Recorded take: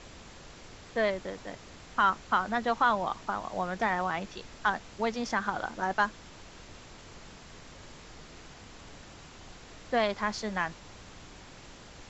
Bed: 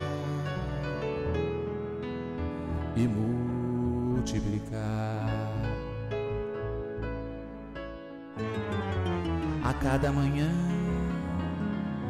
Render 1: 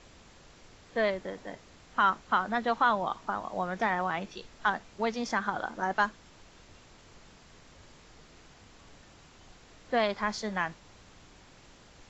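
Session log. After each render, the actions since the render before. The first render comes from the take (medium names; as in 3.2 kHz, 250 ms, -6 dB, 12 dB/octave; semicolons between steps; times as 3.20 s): noise print and reduce 6 dB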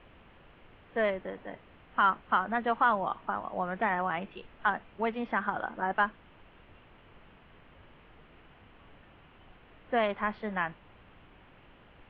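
elliptic low-pass 3 kHz, stop band 60 dB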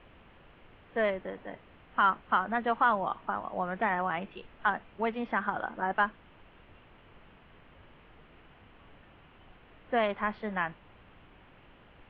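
no audible change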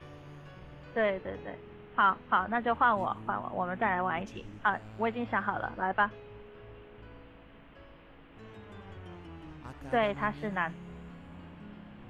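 add bed -17 dB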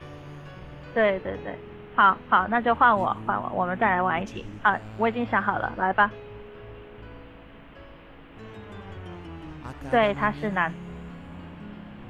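trim +7 dB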